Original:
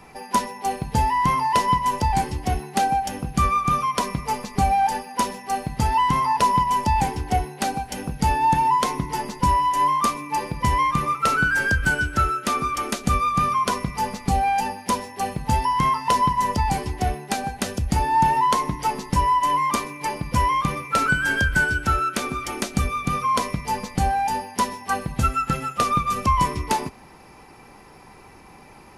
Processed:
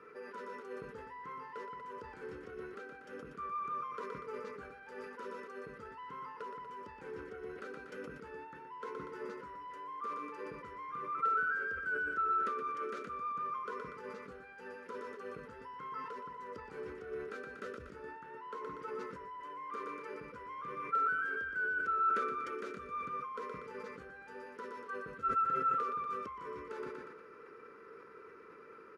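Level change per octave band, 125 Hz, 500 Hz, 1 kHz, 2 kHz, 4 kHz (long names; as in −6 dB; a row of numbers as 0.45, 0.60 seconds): −32.5, −11.0, −18.5, −14.5, −29.0 decibels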